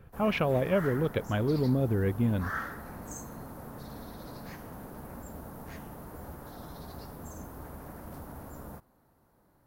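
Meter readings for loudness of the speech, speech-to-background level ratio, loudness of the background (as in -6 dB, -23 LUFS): -28.5 LUFS, 14.5 dB, -43.0 LUFS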